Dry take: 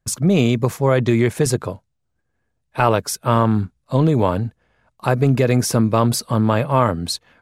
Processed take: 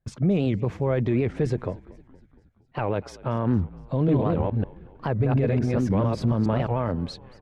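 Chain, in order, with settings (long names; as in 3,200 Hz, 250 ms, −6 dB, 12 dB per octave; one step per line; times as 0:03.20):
0:03.94–0:06.68: delay that plays each chunk backwards 140 ms, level 0 dB
parametric band 1,200 Hz −6 dB 0.93 octaves
brickwall limiter −11.5 dBFS, peak gain reduction 11.5 dB
low-pass filter 2,200 Hz 12 dB per octave
echo with shifted repeats 232 ms, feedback 58%, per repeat −51 Hz, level −21 dB
wow of a warped record 78 rpm, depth 250 cents
level −2.5 dB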